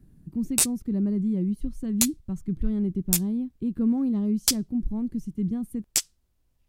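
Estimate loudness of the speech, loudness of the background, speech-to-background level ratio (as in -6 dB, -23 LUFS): -28.5 LUFS, -26.0 LUFS, -2.5 dB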